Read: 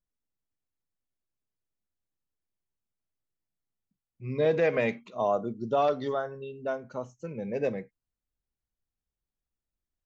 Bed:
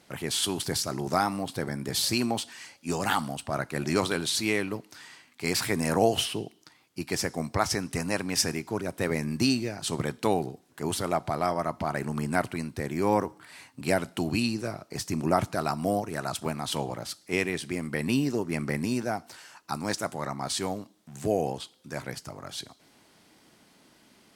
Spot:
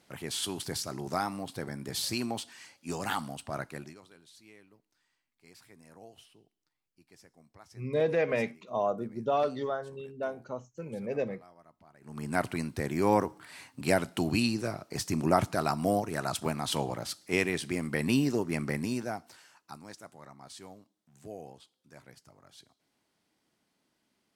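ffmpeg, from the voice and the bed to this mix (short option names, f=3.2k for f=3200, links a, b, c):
-filter_complex "[0:a]adelay=3550,volume=-2.5dB[a];[1:a]volume=22.5dB,afade=t=out:st=3.64:d=0.31:silence=0.0707946,afade=t=in:st=12.01:d=0.49:silence=0.0375837,afade=t=out:st=18.32:d=1.56:silence=0.141254[b];[a][b]amix=inputs=2:normalize=0"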